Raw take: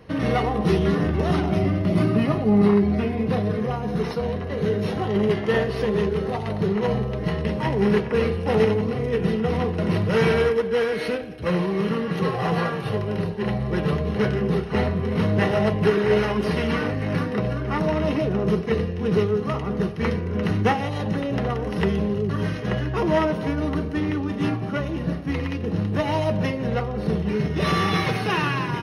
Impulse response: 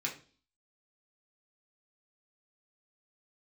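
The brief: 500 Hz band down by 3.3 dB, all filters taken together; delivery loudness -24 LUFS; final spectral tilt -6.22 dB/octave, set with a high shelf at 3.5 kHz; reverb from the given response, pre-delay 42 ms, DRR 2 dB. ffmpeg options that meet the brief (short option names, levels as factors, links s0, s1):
-filter_complex "[0:a]equalizer=f=500:t=o:g=-4,highshelf=f=3500:g=-3,asplit=2[s0][s1];[1:a]atrim=start_sample=2205,adelay=42[s2];[s1][s2]afir=irnorm=-1:irlink=0,volume=0.562[s3];[s0][s3]amix=inputs=2:normalize=0,volume=0.891"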